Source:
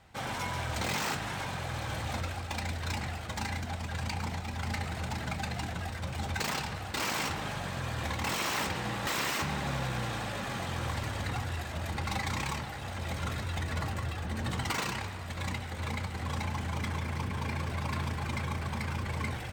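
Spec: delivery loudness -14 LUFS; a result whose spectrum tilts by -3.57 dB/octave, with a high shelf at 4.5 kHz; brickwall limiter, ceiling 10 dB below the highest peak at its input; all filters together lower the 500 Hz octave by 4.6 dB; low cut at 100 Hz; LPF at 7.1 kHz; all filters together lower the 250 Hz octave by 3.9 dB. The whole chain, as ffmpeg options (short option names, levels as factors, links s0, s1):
-af "highpass=100,lowpass=7100,equalizer=f=250:t=o:g=-4,equalizer=f=500:t=o:g=-5,highshelf=f=4500:g=5,volume=16.8,alimiter=limit=0.562:level=0:latency=1"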